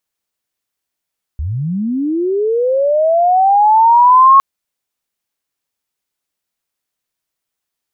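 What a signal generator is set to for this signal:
glide linear 65 Hz → 1,100 Hz −17 dBFS → −3 dBFS 3.01 s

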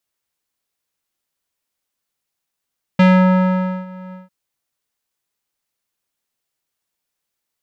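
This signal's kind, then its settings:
subtractive voice square F#3 12 dB per octave, low-pass 1,400 Hz, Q 1.2, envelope 1 octave, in 0.26 s, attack 6.3 ms, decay 0.86 s, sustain −24 dB, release 0.16 s, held 1.14 s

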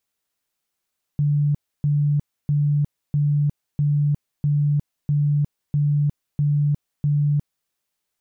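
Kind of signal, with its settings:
tone bursts 146 Hz, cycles 52, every 0.65 s, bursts 10, −16 dBFS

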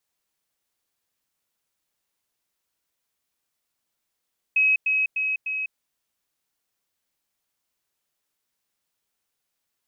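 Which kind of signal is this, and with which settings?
level staircase 2,550 Hz −16 dBFS, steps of −3 dB, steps 4, 0.20 s 0.10 s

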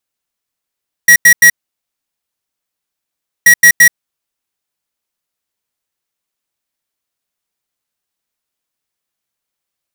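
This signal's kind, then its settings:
beeps in groups square 1,910 Hz, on 0.08 s, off 0.09 s, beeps 3, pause 1.96 s, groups 2, −4 dBFS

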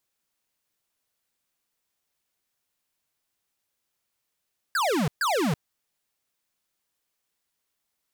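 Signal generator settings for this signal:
repeated falling chirps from 1,700 Hz, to 130 Hz, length 0.33 s square, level −24 dB, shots 2, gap 0.13 s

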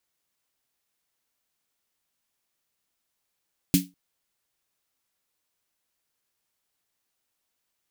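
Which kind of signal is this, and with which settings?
synth snare length 0.20 s, tones 180 Hz, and 280 Hz, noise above 2,300 Hz, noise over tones −5.5 dB, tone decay 0.23 s, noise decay 0.20 s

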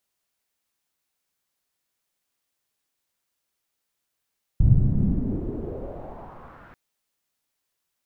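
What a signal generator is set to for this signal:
filter sweep on noise pink, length 2.14 s lowpass, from 110 Hz, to 1,600 Hz, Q 2.5, exponential, gain ramp −36.5 dB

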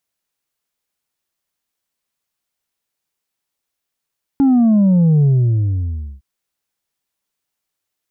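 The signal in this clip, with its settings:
bass drop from 280 Hz, over 1.81 s, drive 3 dB, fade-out 0.97 s, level −9.5 dB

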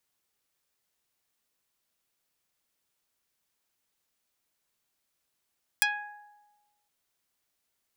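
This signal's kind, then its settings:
Karplus-Strong string G#5, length 1.06 s, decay 1.25 s, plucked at 0.19, dark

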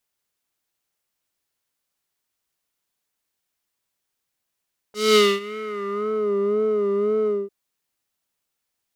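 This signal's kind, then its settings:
subtractive patch with vibrato G#4, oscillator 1 triangle, oscillator 2 sine, interval −12 semitones, oscillator 2 level −5 dB, sub −23 dB, noise −28 dB, filter bandpass, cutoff 460 Hz, Q 1.7, filter envelope 3.5 octaves, filter decay 1.37 s, filter sustain 20%, attack 216 ms, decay 0.24 s, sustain −23 dB, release 0.22 s, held 2.33 s, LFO 1.9 Hz, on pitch 73 cents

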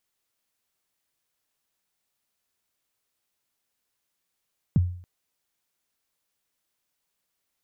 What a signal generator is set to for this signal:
synth kick length 0.28 s, from 210 Hz, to 89 Hz, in 26 ms, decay 0.52 s, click off, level −13.5 dB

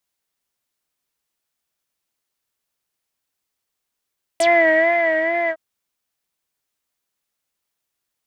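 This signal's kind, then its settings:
subtractive patch with vibrato E5, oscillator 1 triangle, interval −12 semitones, detune 9 cents, oscillator 2 level −17.5 dB, noise −18 dB, filter lowpass, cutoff 1,300 Hz, Q 7.8, filter envelope 3 octaves, filter decay 0.07 s, filter sustain 20%, attack 4.3 ms, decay 0.86 s, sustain −7 dB, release 0.06 s, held 1.10 s, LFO 2.3 Hz, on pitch 71 cents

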